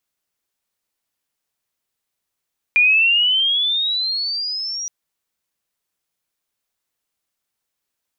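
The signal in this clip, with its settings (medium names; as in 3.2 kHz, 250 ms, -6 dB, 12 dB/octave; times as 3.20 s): sweep logarithmic 2.4 kHz -> 5.8 kHz -10 dBFS -> -24 dBFS 2.12 s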